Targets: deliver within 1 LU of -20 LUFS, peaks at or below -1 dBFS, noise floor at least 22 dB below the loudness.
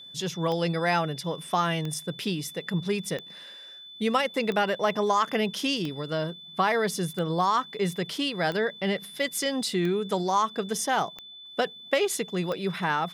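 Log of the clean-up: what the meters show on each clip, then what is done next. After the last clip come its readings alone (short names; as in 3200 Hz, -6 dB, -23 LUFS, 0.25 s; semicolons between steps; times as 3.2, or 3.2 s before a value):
clicks 10; steady tone 3500 Hz; tone level -43 dBFS; loudness -27.5 LUFS; peak -11.5 dBFS; loudness target -20.0 LUFS
-> de-click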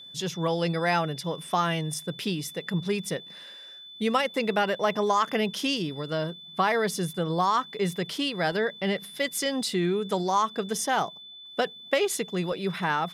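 clicks 0; steady tone 3500 Hz; tone level -43 dBFS
-> notch 3500 Hz, Q 30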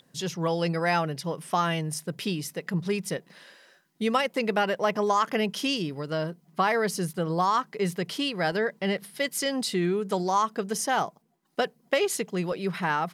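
steady tone none; loudness -27.5 LUFS; peak -11.5 dBFS; loudness target -20.0 LUFS
-> gain +7.5 dB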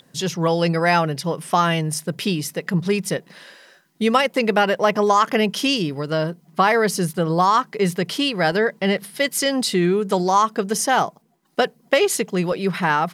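loudness -20.0 LUFS; peak -4.0 dBFS; noise floor -58 dBFS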